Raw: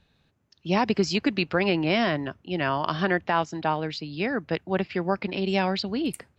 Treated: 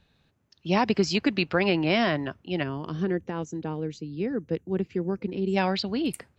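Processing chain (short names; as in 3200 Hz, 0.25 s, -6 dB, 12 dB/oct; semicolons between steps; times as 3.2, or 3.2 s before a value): spectral gain 2.63–5.57, 520–5700 Hz -14 dB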